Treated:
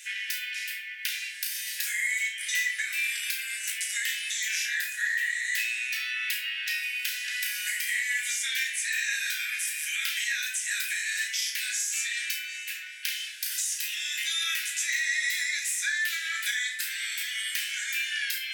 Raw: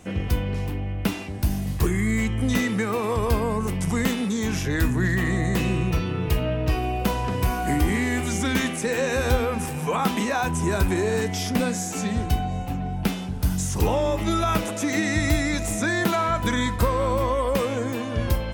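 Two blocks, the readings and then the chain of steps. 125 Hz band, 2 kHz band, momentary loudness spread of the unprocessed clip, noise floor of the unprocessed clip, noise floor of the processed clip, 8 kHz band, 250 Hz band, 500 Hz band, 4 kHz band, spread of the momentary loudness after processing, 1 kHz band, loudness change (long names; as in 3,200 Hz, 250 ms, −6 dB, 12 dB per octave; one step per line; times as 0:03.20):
below −40 dB, +3.0 dB, 5 LU, −30 dBFS, −38 dBFS, +3.5 dB, below −40 dB, below −40 dB, +4.0 dB, 5 LU, −26.0 dB, −4.0 dB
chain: Butterworth high-pass 1,600 Hz 96 dB per octave
downward compressor 5 to 1, threshold −39 dBFS, peak gain reduction 12.5 dB
flutter between parallel walls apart 5.8 metres, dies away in 0.25 s
rectangular room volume 340 cubic metres, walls furnished, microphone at 1.8 metres
level +8.5 dB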